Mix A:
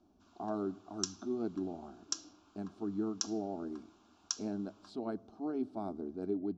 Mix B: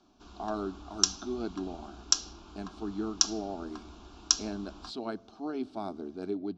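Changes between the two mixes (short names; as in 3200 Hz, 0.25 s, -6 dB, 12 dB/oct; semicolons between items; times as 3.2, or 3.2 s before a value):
background: remove HPF 1400 Hz 12 dB/oct; master: add bell 3600 Hz +14.5 dB 3 oct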